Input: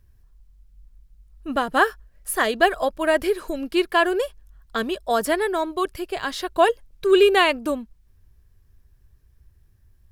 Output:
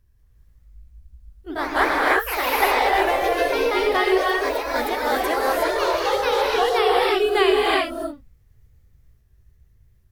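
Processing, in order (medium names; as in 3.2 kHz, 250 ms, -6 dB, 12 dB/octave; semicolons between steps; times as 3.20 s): sawtooth pitch modulation +3 st, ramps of 880 ms; gated-style reverb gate 390 ms rising, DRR -3.5 dB; ever faster or slower copies 195 ms, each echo +2 st, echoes 3; trim -4.5 dB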